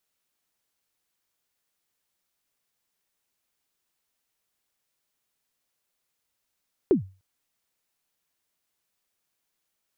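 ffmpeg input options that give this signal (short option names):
-f lavfi -i "aevalsrc='0.251*pow(10,-3*t/0.32)*sin(2*PI*(430*0.116/log(95/430)*(exp(log(95/430)*min(t,0.116)/0.116)-1)+95*max(t-0.116,0)))':d=0.3:s=44100"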